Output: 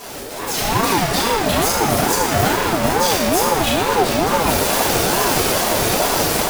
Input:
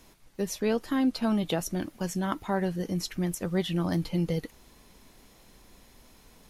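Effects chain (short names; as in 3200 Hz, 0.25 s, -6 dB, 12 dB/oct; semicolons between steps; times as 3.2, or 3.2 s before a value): infinite clipping; AGC gain up to 14 dB; FDN reverb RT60 1.8 s, low-frequency decay 1×, high-frequency decay 0.65×, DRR -8 dB; ring modulator with a swept carrier 560 Hz, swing 30%, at 2.3 Hz; gain -5.5 dB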